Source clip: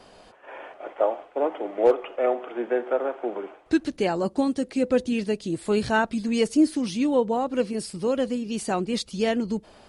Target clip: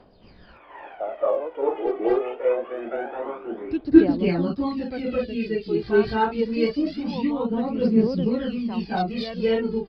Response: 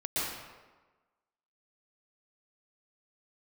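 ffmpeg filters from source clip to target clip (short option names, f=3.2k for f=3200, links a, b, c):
-filter_complex "[1:a]atrim=start_sample=2205,atrim=end_sample=6615,asetrate=23814,aresample=44100[a];[0:a][a]afir=irnorm=-1:irlink=0,aresample=11025,aresample=44100,asettb=1/sr,asplit=3[b][c][d];[b]atrim=end=5.224[e];[c]atrim=start=5.22:end=5.75,asetpts=PTS-STARTPTS,afade=t=in:d=0.004:c=qsin,afade=t=out:st=0.526:d=0.004:c=qsin,equalizer=f=990:w=1.5:g=-10[f];[d]atrim=start=5.746[g];[e][f]acrossfade=d=0.004:c1=hsin:c2=qsin[h];[h][g]acrossfade=d=0.004:c1=qsin:c2=hsin,aphaser=in_gain=1:out_gain=1:delay=2.7:decay=0.65:speed=0.25:type=triangular,lowshelf=f=370:g=6,volume=-12dB"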